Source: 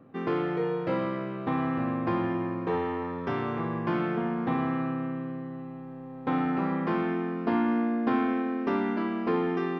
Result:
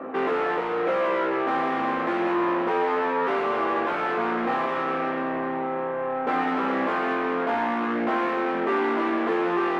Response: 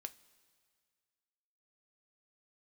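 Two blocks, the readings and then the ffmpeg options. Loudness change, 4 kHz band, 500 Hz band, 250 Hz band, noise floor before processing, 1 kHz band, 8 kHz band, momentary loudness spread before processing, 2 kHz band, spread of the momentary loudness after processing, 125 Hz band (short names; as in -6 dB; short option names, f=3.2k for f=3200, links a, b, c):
+4.0 dB, +8.0 dB, +6.0 dB, -0.5 dB, -41 dBFS, +8.5 dB, n/a, 7 LU, +9.0 dB, 3 LU, -9.5 dB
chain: -filter_complex "[0:a]asplit=2[a][b];[b]highpass=f=720:p=1,volume=37dB,asoftclip=type=tanh:threshold=-14.5dB[c];[a][c]amix=inputs=2:normalize=0,lowpass=f=1.6k:p=1,volume=-6dB,acrossover=split=240 2900:gain=0.0708 1 0.141[d][e][f];[d][e][f]amix=inputs=3:normalize=0,flanger=delay=15.5:depth=2.4:speed=0.28,volume=1.5dB"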